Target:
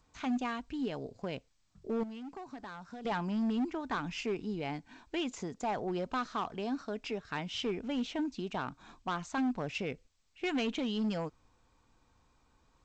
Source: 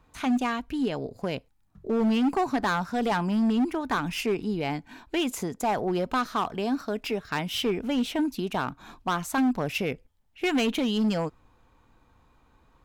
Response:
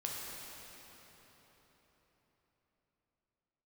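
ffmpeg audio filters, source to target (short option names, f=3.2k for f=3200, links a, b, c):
-filter_complex "[0:a]asettb=1/sr,asplit=3[a][b][c];[a]atrim=end=2.034[d];[b]atrim=start=2.03:end=3.05,asetpts=PTS-STARTPTS,afade=t=in:d=0.004:c=qsin,afade=t=out:st=1.016:d=0.004:c=qsin,acompressor=threshold=-34dB:ratio=16[e];[c]atrim=start=3.046[f];[d][e]acrossfade=d=0.004:c1=hsin:c2=qsin[g];[g][f]acrossfade=d=0.004:c1=qsin:c2=hsin,volume=-8dB" -ar 16000 -c:a g722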